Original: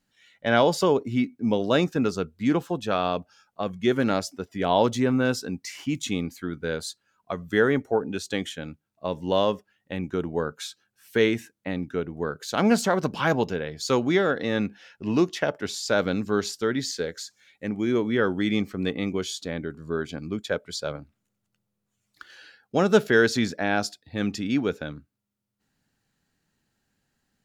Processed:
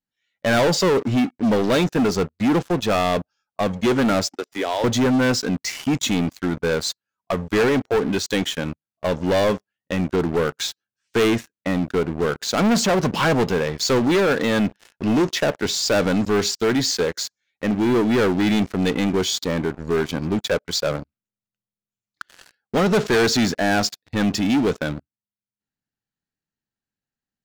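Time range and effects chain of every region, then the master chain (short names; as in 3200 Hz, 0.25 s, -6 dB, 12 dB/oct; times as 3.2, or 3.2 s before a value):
4.36–4.84 HPF 310 Hz 24 dB/oct + high shelf 5500 Hz +10 dB + compressor 3:1, threshold -32 dBFS
whole clip: steep low-pass 7700 Hz; sample leveller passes 5; gain -7.5 dB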